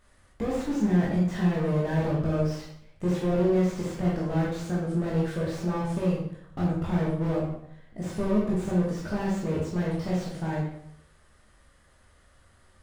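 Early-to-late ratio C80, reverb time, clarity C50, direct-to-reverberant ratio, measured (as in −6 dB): 5.0 dB, 0.70 s, 1.5 dB, −6.0 dB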